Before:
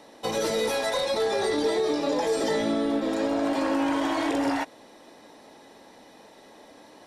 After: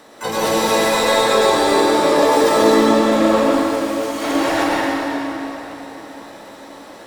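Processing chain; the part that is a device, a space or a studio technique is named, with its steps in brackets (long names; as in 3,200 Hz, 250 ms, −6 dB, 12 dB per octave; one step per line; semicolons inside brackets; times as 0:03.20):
0:03.40–0:04.24: first difference
shimmer-style reverb (pitch-shifted copies added +12 semitones −5 dB; convolution reverb RT60 4.0 s, pre-delay 96 ms, DRR −5.5 dB)
level +4 dB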